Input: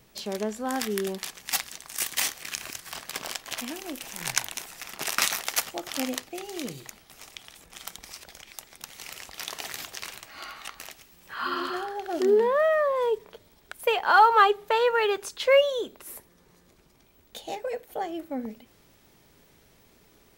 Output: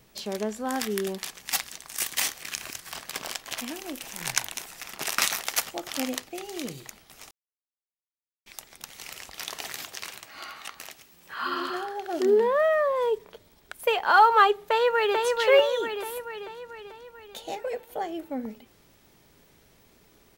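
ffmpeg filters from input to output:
-filter_complex "[0:a]asettb=1/sr,asplit=3[s0][s1][s2];[s0]atrim=end=9.724[s3];[s1]atrim=start=9.72:end=12.26,asetpts=PTS-STARTPTS,afade=t=in:d=0.004:c=qsin,afade=t=out:st=2.536:d=0.004:c=qsin,highpass=f=100:p=1[s4];[s2]atrim=start=12.256[s5];[s3][s4]acrossfade=d=0.004:c1=hsin:c2=qsin[s6];[s6][s5]acrossfade=d=0.004:c1=qsin:c2=hsin,asplit=2[s7][s8];[s8]afade=t=in:st=14.64:d=0.01,afade=t=out:st=15.23:d=0.01,aecho=0:1:440|880|1320|1760|2200|2640|3080|3520:0.707946|0.38937|0.214154|0.117784|0.0647815|0.0356298|0.0195964|0.010778[s9];[s7][s9]amix=inputs=2:normalize=0,asplit=3[s10][s11][s12];[s10]atrim=end=7.31,asetpts=PTS-STARTPTS,afade=t=out:st=7.306:d=0.004:c=hsin[s13];[s11]atrim=start=7.31:end=8.46,asetpts=PTS-STARTPTS,volume=0[s14];[s12]atrim=start=8.46,asetpts=PTS-STARTPTS,afade=t=in:d=0.004:c=hsin[s15];[s13][s14][s15]concat=n=3:v=0:a=1"

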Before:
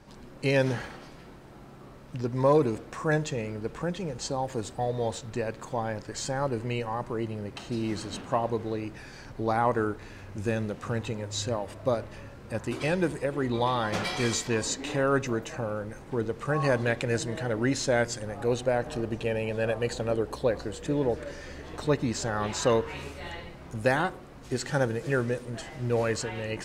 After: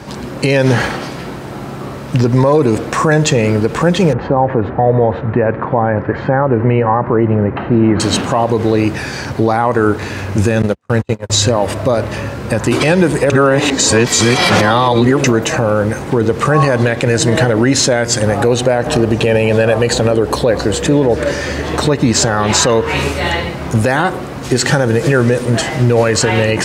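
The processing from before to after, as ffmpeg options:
-filter_complex "[0:a]asettb=1/sr,asplit=3[s0][s1][s2];[s0]atrim=end=4.134[s3];[s1]atrim=start=4.13:end=8,asetpts=PTS-STARTPTS,afade=t=in:d=0.004:c=qsin,afade=t=out:st=3.866:d=0.004:c=qsin,lowpass=f=1900:w=0.5412,lowpass=f=1900:w=1.3066[s4];[s2]atrim=start=7.996[s5];[s3][s4]acrossfade=d=0.004:c1=hsin:c2=qsin[s6];[s6][s5]acrossfade=d=0.004:c1=qsin:c2=hsin,asettb=1/sr,asplit=3[s7][s8][s9];[s7]atrim=end=10.624[s10];[s8]atrim=start=10.62:end=11.3,asetpts=PTS-STARTPTS,afade=t=in:d=0.004:c=qsin,afade=t=out:st=0.676:d=0.004:c=qsin,agate=range=0.00282:threshold=0.0251:ratio=16:release=100:detection=peak[s11];[s9]atrim=start=11.296[s12];[s10][s11]acrossfade=d=0.004:c1=hsin:c2=qsin[s13];[s13][s12]acrossfade=d=0.004:c1=qsin:c2=hsin,asplit=3[s14][s15][s16];[s14]atrim=end=13.302[s17];[s15]atrim=start=13.298:end=15.242,asetpts=PTS-STARTPTS,areverse[s18];[s16]atrim=start=15.238[s19];[s17][s18]acrossfade=d=0.004:c1=hsin:c2=hsin[s20];[s20][s19]acrossfade=d=0.004:c1=hsin:c2=hsin,highpass=f=63:w=0.5412,highpass=f=63:w=1.3066,acompressor=threshold=0.0447:ratio=6,alimiter=level_in=15.8:limit=0.891:release=50:level=0:latency=1,volume=0.891"

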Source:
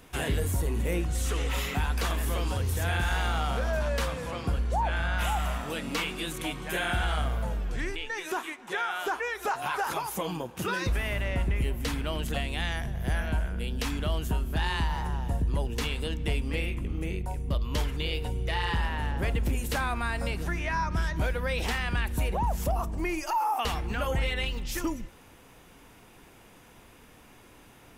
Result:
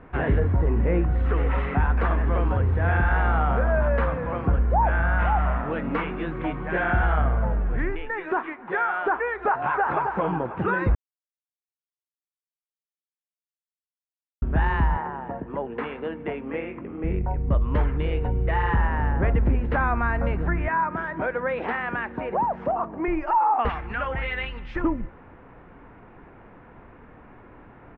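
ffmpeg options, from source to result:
-filter_complex "[0:a]asplit=2[s0][s1];[s1]afade=t=in:st=9.6:d=0.01,afade=t=out:st=10.11:d=0.01,aecho=0:1:270|540|810|1080|1350|1620:0.421697|0.210848|0.105424|0.0527121|0.026356|0.013178[s2];[s0][s2]amix=inputs=2:normalize=0,asettb=1/sr,asplit=3[s3][s4][s5];[s3]atrim=end=14.974[s6];[s4]atrim=start=14.97:end=17.04,asetpts=PTS-STARTPTS,afade=t=in:d=0.004:c=qsin,afade=t=out:st=2.066:d=0.004:c=qsin,highpass=290,lowpass=3500[s7];[s5]atrim=start=17.036[s8];[s6][s7]acrossfade=d=0.004:c1=hsin:c2=qsin[s9];[s9][s8]acrossfade=d=0.004:c1=qsin:c2=hsin,asettb=1/sr,asplit=3[s10][s11][s12];[s10]atrim=end=20.684[s13];[s11]atrim=start=20.68:end=23.08,asetpts=PTS-STARTPTS,afade=t=in:d=0.004:c=qsin,afade=t=out:st=2.396:d=0.004:c=qsin,highpass=260[s14];[s12]atrim=start=23.076[s15];[s13][s14]acrossfade=d=0.004:c1=hsin:c2=qsin[s16];[s16][s15]acrossfade=d=0.004:c1=qsin:c2=hsin,asettb=1/sr,asplit=3[s17][s18][s19];[s17]atrim=end=23.694[s20];[s18]atrim=start=23.69:end=24.76,asetpts=PTS-STARTPTS,afade=t=in:d=0.004:c=qsin,afade=t=out:st=1.066:d=0.004:c=qsin,tiltshelf=f=1400:g=-10[s21];[s19]atrim=start=24.756[s22];[s20][s21]acrossfade=d=0.004:c1=hsin:c2=qsin[s23];[s23][s22]acrossfade=d=0.004:c1=qsin:c2=hsin,asplit=3[s24][s25][s26];[s24]atrim=end=10.95,asetpts=PTS-STARTPTS,afade=t=out:st=10.946:d=0.004:c=hsin[s27];[s25]atrim=start=10.95:end=14.42,asetpts=PTS-STARTPTS,volume=0[s28];[s26]atrim=start=14.42,asetpts=PTS-STARTPTS,afade=t=in:d=0.004:c=hsin[s29];[s27][s28][s29]concat=n=3:v=0:a=1,lowpass=f=1800:w=0.5412,lowpass=f=1800:w=1.3066,volume=2.24"

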